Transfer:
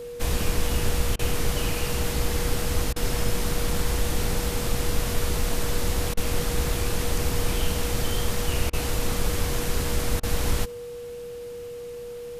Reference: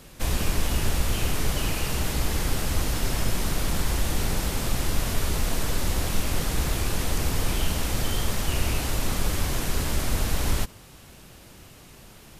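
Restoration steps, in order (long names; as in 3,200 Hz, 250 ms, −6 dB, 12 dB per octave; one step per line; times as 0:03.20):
notch filter 480 Hz, Q 30
repair the gap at 0:01.16/0:02.93/0:06.14/0:08.70/0:10.20, 30 ms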